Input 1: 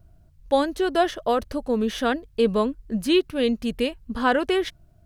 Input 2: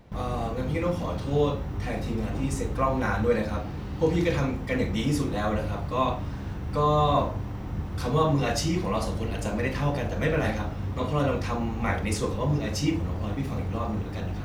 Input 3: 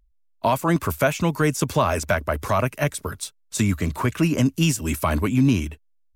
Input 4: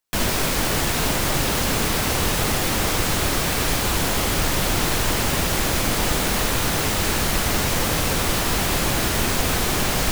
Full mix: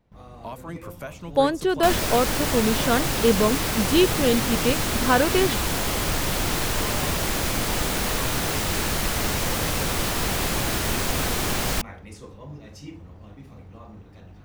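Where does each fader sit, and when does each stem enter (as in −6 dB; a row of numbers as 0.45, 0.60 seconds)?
+1.0, −14.5, −16.5, −3.5 decibels; 0.85, 0.00, 0.00, 1.70 seconds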